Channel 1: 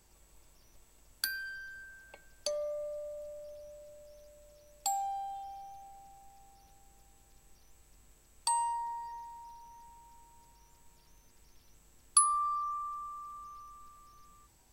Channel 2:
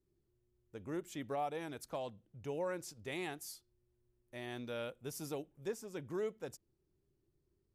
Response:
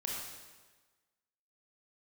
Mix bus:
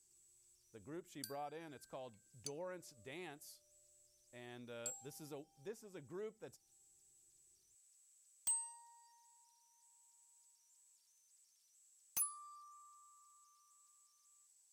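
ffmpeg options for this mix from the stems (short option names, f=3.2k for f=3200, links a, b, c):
-filter_complex "[0:a]bandpass=f=7.9k:t=q:w=2.2:csg=0,volume=0dB[a];[1:a]volume=-9.5dB,asplit=2[b][c];[c]apad=whole_len=649217[d];[a][d]sidechaincompress=threshold=-53dB:ratio=8:attack=6.1:release=431[e];[e][b]amix=inputs=2:normalize=0,aeval=exprs='0.0251*(abs(mod(val(0)/0.0251+3,4)-2)-1)':c=same"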